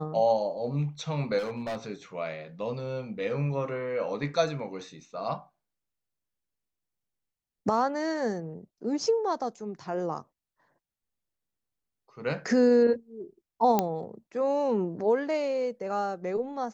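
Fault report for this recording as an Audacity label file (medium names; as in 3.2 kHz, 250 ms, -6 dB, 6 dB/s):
1.380000	1.860000	clipped -29.5 dBFS
13.790000	13.790000	pop -10 dBFS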